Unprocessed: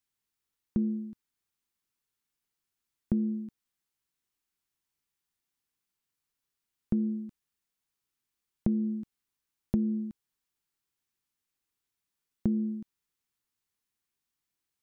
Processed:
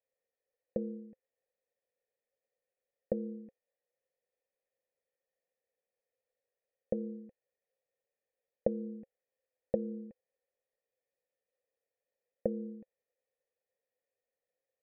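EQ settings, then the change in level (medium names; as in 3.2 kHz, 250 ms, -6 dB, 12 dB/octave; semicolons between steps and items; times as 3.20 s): cascade formant filter e; high-order bell 590 Hz +13.5 dB 1.1 oct; +7.5 dB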